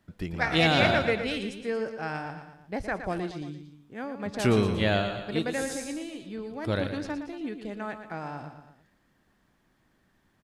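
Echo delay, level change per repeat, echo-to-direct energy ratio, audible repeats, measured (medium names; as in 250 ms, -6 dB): 116 ms, -5.0 dB, -8.0 dB, 3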